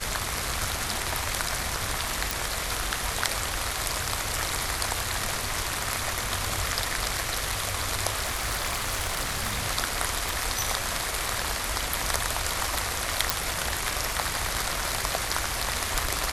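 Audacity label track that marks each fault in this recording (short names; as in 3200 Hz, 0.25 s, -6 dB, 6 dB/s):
2.310000	2.310000	pop
8.210000	9.600000	clipped -22.5 dBFS
10.290000	10.290000	pop
13.300000	13.300000	pop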